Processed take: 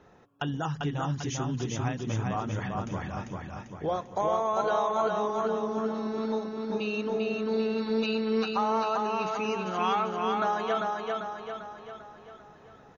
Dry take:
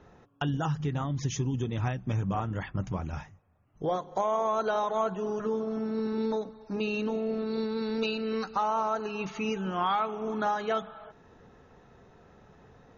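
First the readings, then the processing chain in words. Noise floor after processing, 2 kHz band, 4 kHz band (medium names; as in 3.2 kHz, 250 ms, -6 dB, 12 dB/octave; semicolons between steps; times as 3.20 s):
-53 dBFS, +2.0 dB, +2.0 dB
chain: bass shelf 130 Hz -8 dB; on a send: feedback delay 395 ms, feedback 51%, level -3 dB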